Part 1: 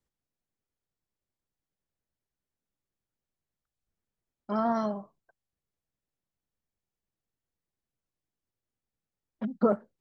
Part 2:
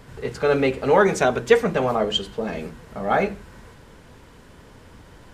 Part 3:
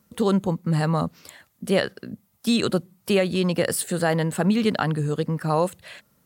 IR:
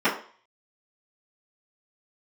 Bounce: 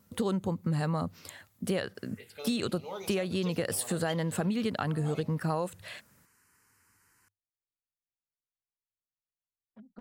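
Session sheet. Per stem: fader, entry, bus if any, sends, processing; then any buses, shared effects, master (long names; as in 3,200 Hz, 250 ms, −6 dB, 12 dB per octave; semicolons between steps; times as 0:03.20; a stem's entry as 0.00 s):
−20.0 dB, 0.35 s, no send, wavefolder on the positive side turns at −17.5 dBFS
−17.5 dB, 1.95 s, no send, spectral tilt +4.5 dB per octave; phaser swept by the level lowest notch 550 Hz, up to 1,700 Hz, full sweep at −23.5 dBFS
−2.0 dB, 0.00 s, no send, tape wow and flutter 39 cents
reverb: not used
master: parametric band 99 Hz +10.5 dB 0.31 octaves; downward compressor, threshold −27 dBFS, peak gain reduction 10 dB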